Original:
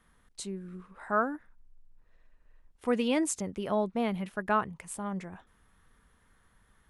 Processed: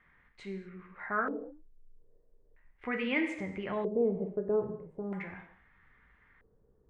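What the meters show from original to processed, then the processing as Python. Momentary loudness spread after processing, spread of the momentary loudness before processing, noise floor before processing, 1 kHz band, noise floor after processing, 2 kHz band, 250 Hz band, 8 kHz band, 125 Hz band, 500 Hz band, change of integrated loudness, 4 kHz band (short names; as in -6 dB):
15 LU, 16 LU, -67 dBFS, -7.0 dB, -67 dBFS, +1.0 dB, -3.5 dB, under -25 dB, -2.5 dB, 0.0 dB, -2.5 dB, -5.5 dB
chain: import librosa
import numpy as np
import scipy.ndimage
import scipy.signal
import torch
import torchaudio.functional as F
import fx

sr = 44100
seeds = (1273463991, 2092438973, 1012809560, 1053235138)

y = fx.rev_gated(x, sr, seeds[0], gate_ms=270, shape='falling', drr_db=3.5)
y = fx.dynamic_eq(y, sr, hz=820.0, q=0.76, threshold_db=-37.0, ratio=4.0, max_db=-6)
y = fx.filter_lfo_lowpass(y, sr, shape='square', hz=0.39, low_hz=450.0, high_hz=2100.0, q=4.9)
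y = y * 10.0 ** (-4.0 / 20.0)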